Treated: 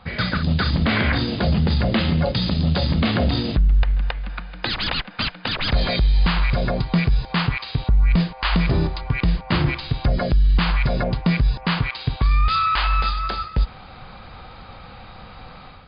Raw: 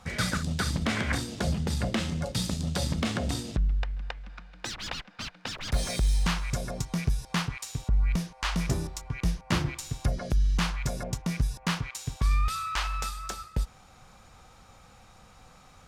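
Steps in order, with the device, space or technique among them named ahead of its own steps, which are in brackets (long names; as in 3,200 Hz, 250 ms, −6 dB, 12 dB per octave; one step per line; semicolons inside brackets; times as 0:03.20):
low-bitrate web radio (automatic gain control gain up to 9 dB; brickwall limiter −15.5 dBFS, peak gain reduction 9 dB; level +5.5 dB; MP3 48 kbit/s 11,025 Hz)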